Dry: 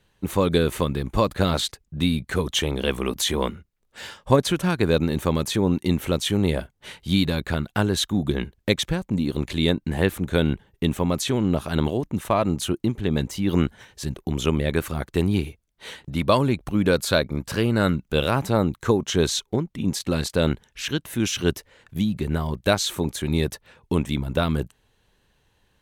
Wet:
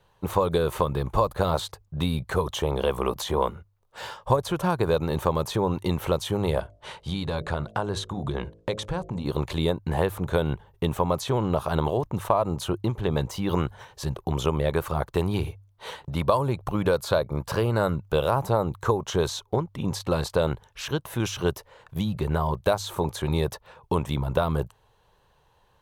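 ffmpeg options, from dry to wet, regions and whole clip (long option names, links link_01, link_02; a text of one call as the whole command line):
ffmpeg -i in.wav -filter_complex "[0:a]asettb=1/sr,asplit=3[link_01][link_02][link_03];[link_01]atrim=end=6.604[link_04];[link_02]atrim=start=6.6:end=9.26,asetpts=PTS-STARTPTS,afade=type=in:duration=0.004:curve=qsin,afade=type=out:start_time=2.656:duration=0.004:curve=qsin,acompressor=threshold=-25dB:ratio=2.5:attack=3.2:release=140:knee=1:detection=peak,lowpass=frequency=10000:width=0.5412,lowpass=frequency=10000:width=1.3066,bandreject=frequency=53.28:width_type=h:width=4,bandreject=frequency=106.56:width_type=h:width=4,bandreject=frequency=159.84:width_type=h:width=4,bandreject=frequency=213.12:width_type=h:width=4,bandreject=frequency=266.4:width_type=h:width=4,bandreject=frequency=319.68:width_type=h:width=4,bandreject=frequency=372.96:width_type=h:width=4,bandreject=frequency=426.24:width_type=h:width=4,bandreject=frequency=479.52:width_type=h:width=4,bandreject=frequency=532.8:width_type=h:width=4,bandreject=frequency=586.08:width_type=h:width=4,bandreject=frequency=639.36:width_type=h:width=4,bandreject=frequency=692.64:width_type=h:width=4[link_05];[link_03]atrim=start=9.256[link_06];[link_04][link_05]acrossfade=duration=0.004:curve1=hsin:curve2=qsin[link_07];[link_07][link_06]acrossfade=duration=0.004:curve1=qsin:curve2=hsin,equalizer=frequency=125:width_type=o:width=1:gain=4,equalizer=frequency=250:width_type=o:width=1:gain=-9,equalizer=frequency=500:width_type=o:width=1:gain=5,equalizer=frequency=1000:width_type=o:width=1:gain=10,equalizer=frequency=2000:width_type=o:width=1:gain=-5,equalizer=frequency=8000:width_type=o:width=1:gain=-4,acrossover=split=1100|6600[link_08][link_09][link_10];[link_08]acompressor=threshold=-20dB:ratio=4[link_11];[link_09]acompressor=threshold=-34dB:ratio=4[link_12];[link_10]acompressor=threshold=-41dB:ratio=4[link_13];[link_11][link_12][link_13]amix=inputs=3:normalize=0,bandreject=frequency=49.59:width_type=h:width=4,bandreject=frequency=99.18:width_type=h:width=4" out.wav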